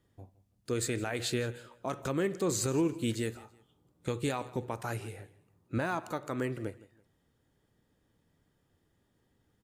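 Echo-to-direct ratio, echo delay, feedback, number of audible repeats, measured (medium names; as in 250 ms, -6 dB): -19.5 dB, 165 ms, 29%, 2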